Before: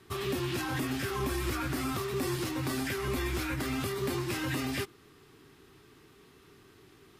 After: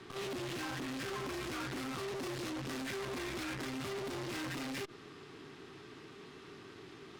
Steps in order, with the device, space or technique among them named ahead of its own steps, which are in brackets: valve radio (BPF 130–5800 Hz; tube stage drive 46 dB, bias 0.5; core saturation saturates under 200 Hz); gain +8.5 dB

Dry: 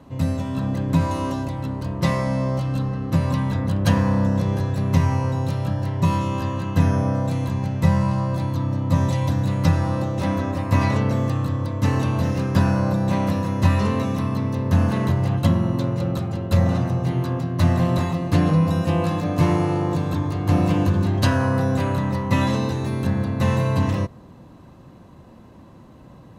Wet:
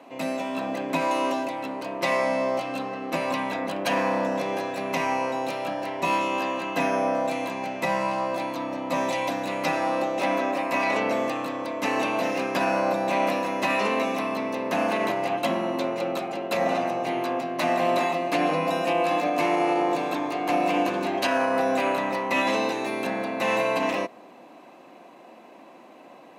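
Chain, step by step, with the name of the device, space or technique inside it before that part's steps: laptop speaker (HPF 280 Hz 24 dB/oct; bell 710 Hz +9.5 dB 0.43 oct; bell 2400 Hz +11.5 dB 0.52 oct; limiter -14 dBFS, peak gain reduction 6.5 dB)

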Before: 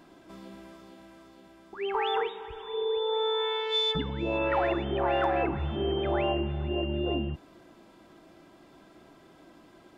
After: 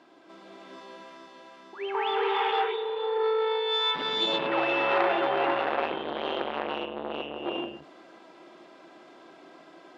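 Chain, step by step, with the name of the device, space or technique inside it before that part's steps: non-linear reverb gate 0.5 s rising, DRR -5 dB; public-address speaker with an overloaded transformer (core saturation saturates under 1300 Hz; BPF 340–5400 Hz)

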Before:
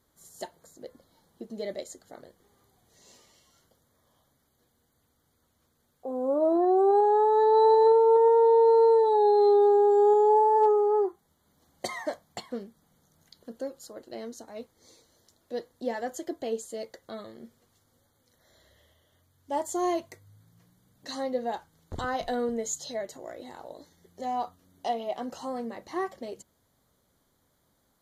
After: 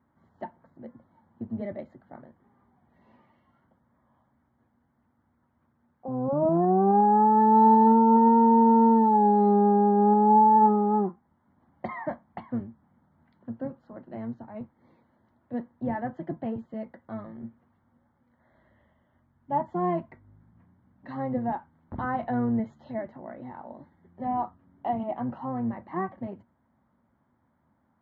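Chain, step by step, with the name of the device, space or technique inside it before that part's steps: sub-octave bass pedal (octaver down 1 oct, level -1 dB; speaker cabinet 80–2000 Hz, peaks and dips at 230 Hz +9 dB, 450 Hz -9 dB, 910 Hz +6 dB)

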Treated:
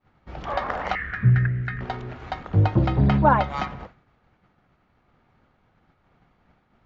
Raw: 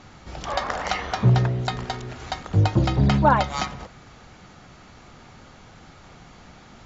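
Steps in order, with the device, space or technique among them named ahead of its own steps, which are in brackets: hearing-loss simulation (LPF 2400 Hz 12 dB/oct; expander -36 dBFS); 0.95–1.81 EQ curve 140 Hz 0 dB, 910 Hz -23 dB, 1700 Hz +10 dB, 3400 Hz -12 dB

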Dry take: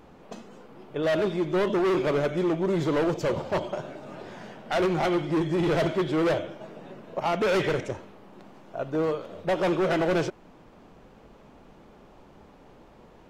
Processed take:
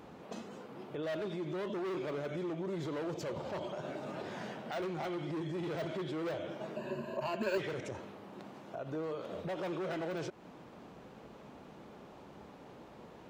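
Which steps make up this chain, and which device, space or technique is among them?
broadcast voice chain (HPF 87 Hz 12 dB/oct; de-esser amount 80%; compressor 3:1, threshold -33 dBFS, peak gain reduction 9 dB; bell 3900 Hz +2 dB 0.2 oct; limiter -31.5 dBFS, peak gain reduction 9.5 dB); 6.76–7.58 ripple EQ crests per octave 1.4, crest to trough 16 dB

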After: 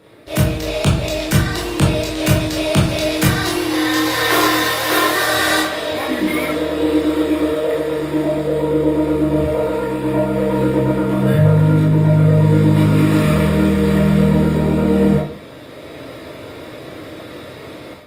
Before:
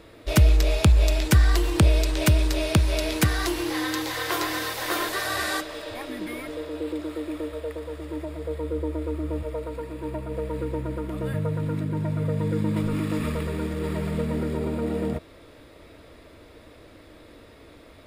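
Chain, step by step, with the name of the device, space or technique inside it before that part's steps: far-field microphone of a smart speaker (reverb RT60 0.50 s, pre-delay 17 ms, DRR -4.5 dB; HPF 120 Hz 12 dB/oct; AGC; gain -1 dB; Opus 32 kbps 48000 Hz)

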